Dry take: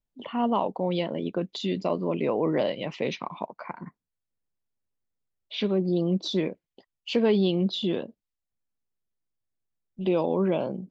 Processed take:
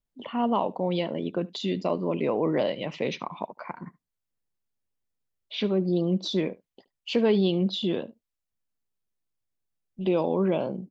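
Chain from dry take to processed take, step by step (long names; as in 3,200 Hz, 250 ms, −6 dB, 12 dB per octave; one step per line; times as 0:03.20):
single-tap delay 73 ms −22 dB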